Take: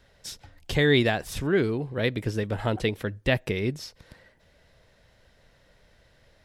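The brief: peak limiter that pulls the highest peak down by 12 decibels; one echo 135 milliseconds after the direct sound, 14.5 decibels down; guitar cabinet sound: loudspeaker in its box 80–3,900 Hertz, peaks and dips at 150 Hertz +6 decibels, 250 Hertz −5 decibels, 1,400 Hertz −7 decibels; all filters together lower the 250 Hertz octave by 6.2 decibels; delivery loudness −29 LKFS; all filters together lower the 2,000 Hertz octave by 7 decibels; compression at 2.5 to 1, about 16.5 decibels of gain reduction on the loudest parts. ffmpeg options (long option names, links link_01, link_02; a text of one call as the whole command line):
ffmpeg -i in.wav -af "equalizer=frequency=250:width_type=o:gain=-9,equalizer=frequency=2000:width_type=o:gain=-6.5,acompressor=threshold=-47dB:ratio=2.5,alimiter=level_in=14.5dB:limit=-24dB:level=0:latency=1,volume=-14.5dB,highpass=80,equalizer=frequency=150:width_type=q:width=4:gain=6,equalizer=frequency=250:width_type=q:width=4:gain=-5,equalizer=frequency=1400:width_type=q:width=4:gain=-7,lowpass=frequency=3900:width=0.5412,lowpass=frequency=3900:width=1.3066,aecho=1:1:135:0.188,volume=20dB" out.wav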